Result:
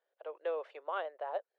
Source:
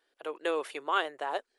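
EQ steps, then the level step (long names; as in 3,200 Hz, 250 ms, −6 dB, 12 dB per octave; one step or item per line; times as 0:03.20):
four-pole ladder high-pass 500 Hz, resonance 60%
head-to-tape spacing loss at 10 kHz 43 dB
high-shelf EQ 2,900 Hz +9 dB
+2.5 dB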